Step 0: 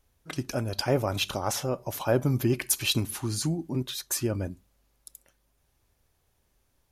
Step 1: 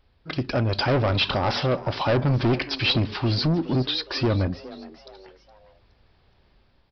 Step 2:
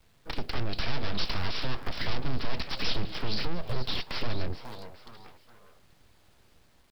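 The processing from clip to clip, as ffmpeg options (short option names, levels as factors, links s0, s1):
-filter_complex "[0:a]dynaudnorm=f=190:g=5:m=1.68,aresample=11025,asoftclip=type=tanh:threshold=0.0596,aresample=44100,asplit=4[s0][s1][s2][s3];[s1]adelay=417,afreqshift=140,volume=0.126[s4];[s2]adelay=834,afreqshift=280,volume=0.0531[s5];[s3]adelay=1251,afreqshift=420,volume=0.0221[s6];[s0][s4][s5][s6]amix=inputs=4:normalize=0,volume=2.24"
-filter_complex "[0:a]aresample=11025,aeval=exprs='abs(val(0))':c=same,aresample=44100,acrossover=split=140|3000[s0][s1][s2];[s1]acompressor=threshold=0.0178:ratio=10[s3];[s0][s3][s2]amix=inputs=3:normalize=0,acrusher=bits=8:dc=4:mix=0:aa=0.000001"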